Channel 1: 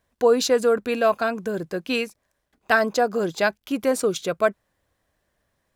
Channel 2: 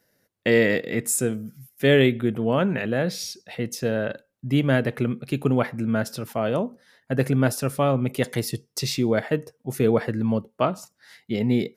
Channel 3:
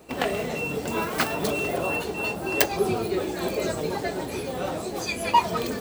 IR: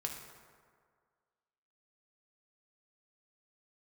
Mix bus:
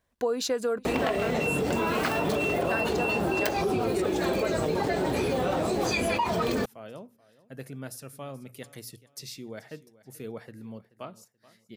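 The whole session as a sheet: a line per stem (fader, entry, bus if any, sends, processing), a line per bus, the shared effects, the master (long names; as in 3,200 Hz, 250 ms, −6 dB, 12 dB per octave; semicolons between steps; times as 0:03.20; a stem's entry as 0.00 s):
−4.0 dB, 0.00 s, no send, echo send −23.5 dB, no processing
−19.0 dB, 0.40 s, no send, echo send −19.5 dB, high-shelf EQ 3,500 Hz +9.5 dB; mains-hum notches 60/120 Hz
+0.5 dB, 0.85 s, no send, no echo send, high-shelf EQ 5,600 Hz −9 dB; envelope flattener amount 70%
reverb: not used
echo: repeating echo 431 ms, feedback 32%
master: downward compressor 6 to 1, threshold −24 dBFS, peak gain reduction 12 dB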